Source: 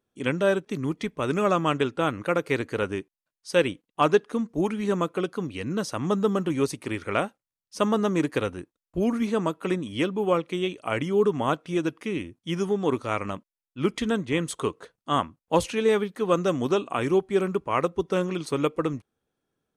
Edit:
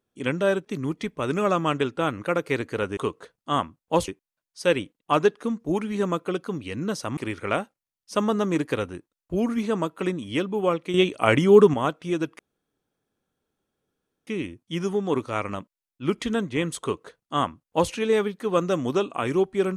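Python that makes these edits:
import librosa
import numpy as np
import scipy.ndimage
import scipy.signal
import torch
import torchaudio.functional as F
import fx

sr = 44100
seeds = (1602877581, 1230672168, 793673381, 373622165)

y = fx.edit(x, sr, fx.cut(start_s=6.06, length_s=0.75),
    fx.clip_gain(start_s=10.58, length_s=0.8, db=8.0),
    fx.insert_room_tone(at_s=12.03, length_s=1.88),
    fx.duplicate(start_s=14.57, length_s=1.11, to_s=2.97), tone=tone)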